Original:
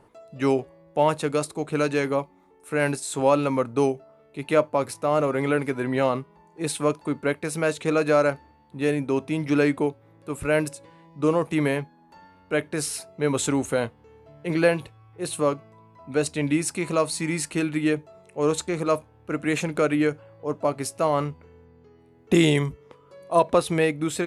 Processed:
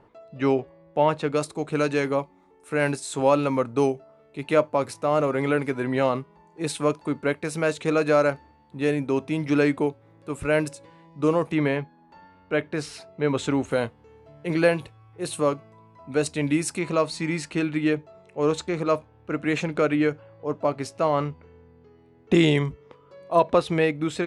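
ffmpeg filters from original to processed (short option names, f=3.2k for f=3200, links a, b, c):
-af "asetnsamples=n=441:p=0,asendcmd='1.36 lowpass f 8500;11.52 lowpass f 4200;13.71 lowpass f 10000;16.79 lowpass f 5300',lowpass=4k"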